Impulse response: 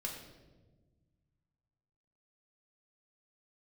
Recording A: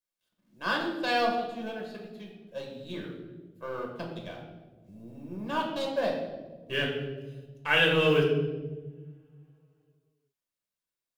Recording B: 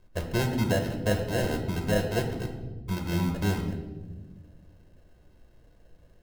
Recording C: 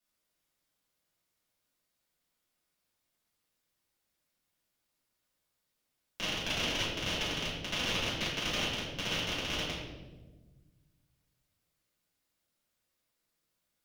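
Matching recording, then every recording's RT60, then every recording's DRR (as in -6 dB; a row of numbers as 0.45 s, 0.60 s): A; 1.3 s, 1.3 s, 1.3 s; -0.5 dB, 4.0 dB, -9.5 dB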